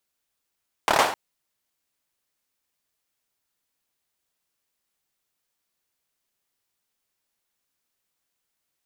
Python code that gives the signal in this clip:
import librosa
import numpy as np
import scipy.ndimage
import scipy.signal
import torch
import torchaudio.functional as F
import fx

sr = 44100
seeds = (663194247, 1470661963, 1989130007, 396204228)

y = fx.drum_clap(sr, seeds[0], length_s=0.26, bursts=5, spacing_ms=27, hz=800.0, decay_s=0.46)